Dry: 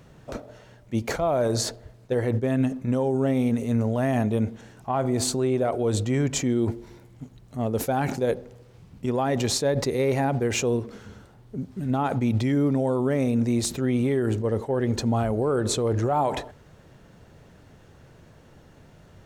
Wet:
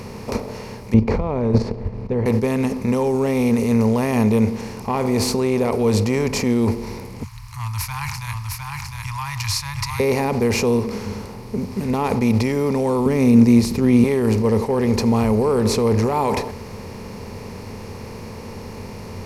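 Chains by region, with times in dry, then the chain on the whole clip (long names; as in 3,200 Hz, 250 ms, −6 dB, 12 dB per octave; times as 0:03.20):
0:00.94–0:02.26: low-pass filter 3,200 Hz + spectral tilt −4.5 dB per octave + output level in coarse steps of 13 dB
0:07.23–0:10.00: Chebyshev band-stop filter 140–970 Hz, order 5 + single-tap delay 707 ms −5 dB
0:13.06–0:14.04: low shelf with overshoot 380 Hz +8.5 dB, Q 1.5 + expander for the loud parts, over −25 dBFS
whole clip: compressor on every frequency bin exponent 0.6; EQ curve with evenly spaced ripples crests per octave 0.86, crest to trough 10 dB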